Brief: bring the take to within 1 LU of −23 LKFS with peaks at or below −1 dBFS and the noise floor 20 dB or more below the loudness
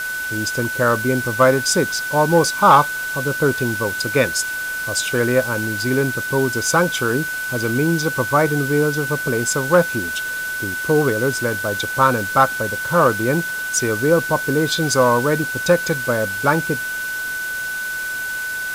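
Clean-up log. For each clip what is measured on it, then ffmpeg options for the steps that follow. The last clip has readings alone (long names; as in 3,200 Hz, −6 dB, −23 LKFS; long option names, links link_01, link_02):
interfering tone 1,500 Hz; level of the tone −23 dBFS; background noise floor −26 dBFS; target noise floor −39 dBFS; integrated loudness −18.5 LKFS; sample peak −2.0 dBFS; target loudness −23.0 LKFS
→ -af "bandreject=frequency=1500:width=30"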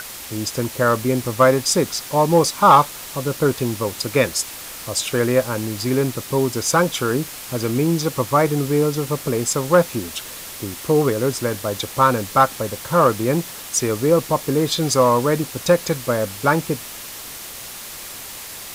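interfering tone none found; background noise floor −35 dBFS; target noise floor −40 dBFS
→ -af "afftdn=noise_reduction=6:noise_floor=-35"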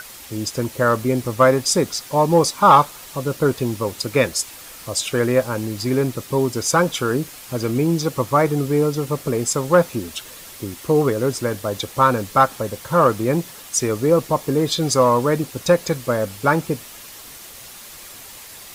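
background noise floor −40 dBFS; integrated loudness −19.5 LKFS; sample peak −3.0 dBFS; target loudness −23.0 LKFS
→ -af "volume=-3.5dB"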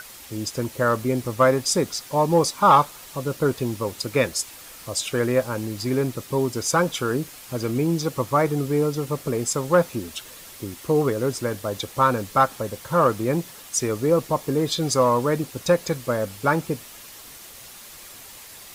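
integrated loudness −23.0 LKFS; sample peak −6.5 dBFS; background noise floor −43 dBFS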